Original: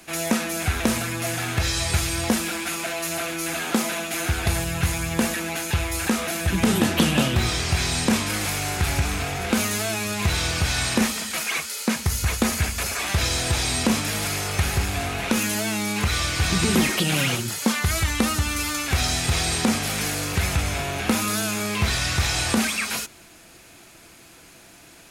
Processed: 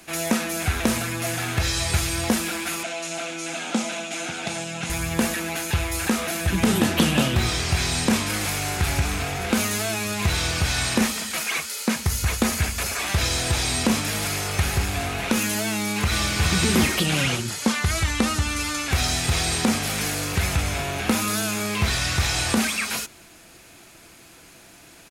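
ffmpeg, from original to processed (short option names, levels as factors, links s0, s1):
-filter_complex "[0:a]asettb=1/sr,asplit=3[s0][s1][s2];[s0]atrim=end=2.834[s3];[s1]atrim=start=2.83:end=4.9,asetpts=PTS-STARTPTS,afade=t=in:d=0.004:c=qsin,afade=t=out:st=2.066:d=0.004:c=qsin,highpass=f=180:w=0.5412,highpass=f=180:w=1.3066,equalizer=f=390:t=q:w=4:g=-9,equalizer=f=1100:t=q:w=4:g=-7,equalizer=f=1800:t=q:w=4:g=-7,equalizer=f=4600:t=q:w=4:g=-4,lowpass=f=8200:w=0.5412,lowpass=f=8200:w=1.3066[s4];[s2]atrim=start=4.896[s5];[s3][s4]acrossfade=d=0.004:c1=hsin:c2=qsin[s6];[s6][s5]acrossfade=d=0.004:c1=qsin:c2=hsin,asplit=2[s7][s8];[s8]afade=t=in:st=15.69:d=0.01,afade=t=out:st=16.43:d=0.01,aecho=0:1:420|840|1260|1680:0.562341|0.168702|0.0506107|0.0151832[s9];[s7][s9]amix=inputs=2:normalize=0,asettb=1/sr,asplit=3[s10][s11][s12];[s10]atrim=end=17.064[s13];[s11]atrim=start=17.06:end=18.92,asetpts=PTS-STARTPTS,afade=t=in:d=0.004:c=qsin,afade=t=out:st=1.856:d=0.004:c=qsin,lowpass=10000[s14];[s12]atrim=start=18.916[s15];[s13][s14]acrossfade=d=0.004:c1=hsin:c2=qsin[s16];[s16][s15]acrossfade=d=0.004:c1=qsin:c2=hsin"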